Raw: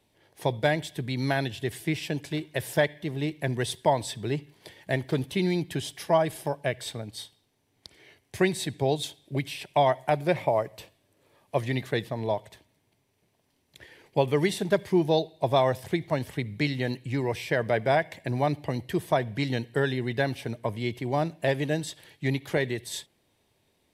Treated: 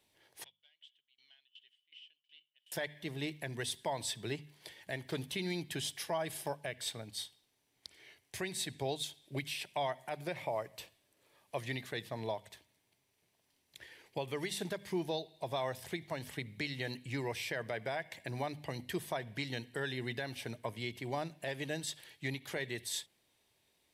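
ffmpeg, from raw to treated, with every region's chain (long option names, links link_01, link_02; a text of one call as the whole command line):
ffmpeg -i in.wav -filter_complex "[0:a]asettb=1/sr,asplit=3[link_01][link_02][link_03];[link_01]atrim=end=0.444[link_04];[link_02]atrim=start=0.44:end=2.72,asetpts=PTS-STARTPTS,afade=type=in:duration=0.004:curve=qsin,afade=type=out:start_time=2.276:duration=0.004:curve=qsin,aeval=exprs='clip(val(0),-1,0.168)':channel_layout=same,bandpass=frequency=3000:width_type=q:width=20,aeval=exprs='val(0)*pow(10,-22*if(lt(mod(2.7*n/s,1),2*abs(2.7)/1000),1-mod(2.7*n/s,1)/(2*abs(2.7)/1000),(mod(2.7*n/s,1)-2*abs(2.7)/1000)/(1-2*abs(2.7)/1000))/20)':channel_layout=same[link_05];[link_03]atrim=start=2.716[link_06];[link_04][link_05]acrossfade=duration=0.004:curve1=hsin:curve2=qsin[link_07];[link_07][link_06]acrossfade=duration=0.004:curve1=qsin:curve2=hsin,tiltshelf=frequency=1100:gain=-4.5,bandreject=frequency=50:width_type=h:width=6,bandreject=frequency=100:width_type=h:width=6,bandreject=frequency=150:width_type=h:width=6,bandreject=frequency=200:width_type=h:width=6,bandreject=frequency=250:width_type=h:width=6,alimiter=limit=-20.5dB:level=0:latency=1:release=194,volume=-5.5dB" out.wav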